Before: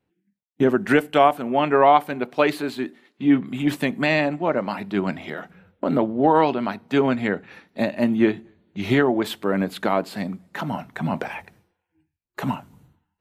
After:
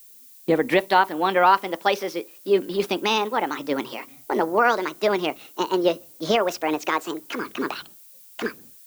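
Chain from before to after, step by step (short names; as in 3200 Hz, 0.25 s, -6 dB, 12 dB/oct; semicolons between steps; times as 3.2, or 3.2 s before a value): speed glide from 123% -> 175%; vibrato 1.3 Hz 29 cents; added noise violet -47 dBFS; gain -1.5 dB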